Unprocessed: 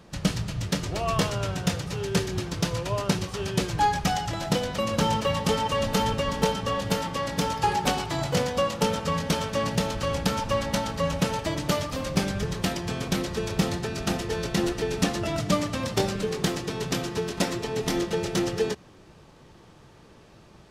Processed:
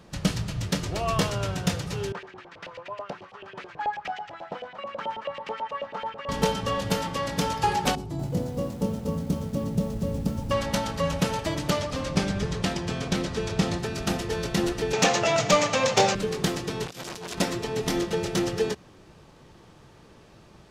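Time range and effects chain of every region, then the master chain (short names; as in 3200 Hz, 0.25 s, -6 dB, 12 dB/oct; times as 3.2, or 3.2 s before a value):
2.12–6.29 high shelf 4700 Hz -9 dB + LFO band-pass saw up 9.2 Hz 550–2800 Hz
7.95–10.51 EQ curve 280 Hz 0 dB, 1600 Hz -21 dB, 3100 Hz -20 dB, 13000 Hz -9 dB + lo-fi delay 0.241 s, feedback 55%, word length 8-bit, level -5.5 dB
11.7–13.79 LPF 8300 Hz + echo with dull and thin repeats by turns 0.121 s, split 1200 Hz, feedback 54%, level -11 dB
14.93–16.15 speaker cabinet 110–8100 Hz, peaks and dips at 130 Hz +7 dB, 320 Hz -6 dB, 490 Hz +8 dB, 800 Hz +6 dB, 2400 Hz +4 dB, 6600 Hz +8 dB + overdrive pedal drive 13 dB, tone 5800 Hz, clips at -8 dBFS
16.86–17.35 high shelf 2500 Hz +11.5 dB + negative-ratio compressor -31 dBFS, ratio -0.5 + core saturation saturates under 2200 Hz
whole clip: dry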